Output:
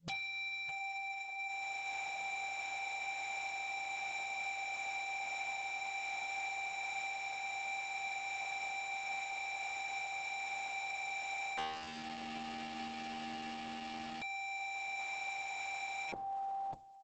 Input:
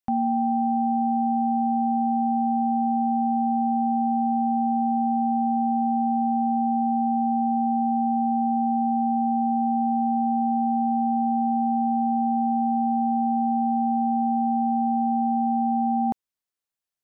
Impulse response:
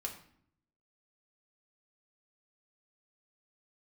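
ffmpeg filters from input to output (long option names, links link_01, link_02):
-filter_complex "[0:a]bandreject=frequency=60:width_type=h:width=6,bandreject=frequency=120:width_type=h:width=6,bandreject=frequency=180:width_type=h:width=6,bandreject=frequency=240:width_type=h:width=6,bandreject=frequency=300:width_type=h:width=6,bandreject=frequency=360:width_type=h:width=6,bandreject=frequency=420:width_type=h:width=6,bandreject=frequency=480:width_type=h:width=6,asplit=2[link_01][link_02];[link_02]adelay=609,lowpass=frequency=810:poles=1,volume=-12.5dB,asplit=2[link_03][link_04];[link_04]adelay=609,lowpass=frequency=810:poles=1,volume=0.17[link_05];[link_01][link_03][link_05]amix=inputs=3:normalize=0,asettb=1/sr,asplit=3[link_06][link_07][link_08];[link_06]atrim=end=11.574[link_09];[link_07]atrim=start=11.57:end=14.22,asetpts=PTS-STARTPTS,afade=type=in:duration=0.004:curve=qsin,afade=type=out:start_time=2.646:duration=0.004:curve=qsin,asoftclip=type=hard:threshold=-23.5dB[link_10];[link_08]atrim=start=14.216[link_11];[link_09][link_10]acrossfade=duration=0.004:curve1=hsin:curve2=qsin[link_12];[link_12][link_11]acrossfade=duration=0.004:curve1=qsin:curve2=hsin,equalizer=frequency=200:width=1.7:gain=8.5,acompressor=threshold=-23dB:ratio=10,afftfilt=real='re*(1-between(b*sr/4096,170,540))':imag='im*(1-between(b*sr/4096,170,540))':win_size=4096:overlap=0.75,aeval=exprs='0.0133*(abs(mod(val(0)/0.0133+3,4)-2)-1)':channel_layout=same,highpass=frequency=59:poles=1,lowshelf=frequency=110:gain=5.5,volume=2.5dB" -ar 48000 -c:a libopus -b:a 10k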